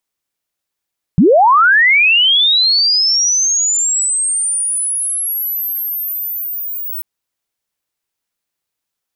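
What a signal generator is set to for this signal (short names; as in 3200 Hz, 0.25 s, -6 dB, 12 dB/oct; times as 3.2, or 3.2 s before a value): chirp linear 140 Hz -> 16000 Hz -5 dBFS -> -20.5 dBFS 5.84 s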